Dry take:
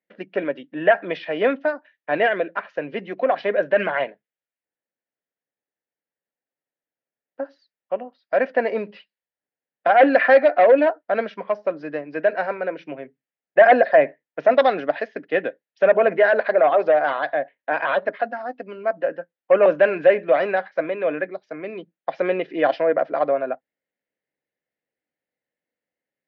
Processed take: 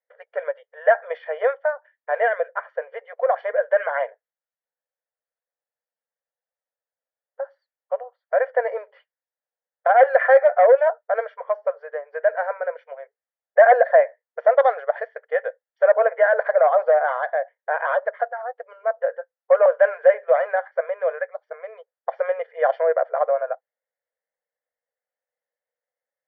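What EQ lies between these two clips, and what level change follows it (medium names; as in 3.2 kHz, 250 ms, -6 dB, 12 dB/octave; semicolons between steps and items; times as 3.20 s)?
Savitzky-Golay filter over 41 samples; brick-wall FIR high-pass 440 Hz; 0.0 dB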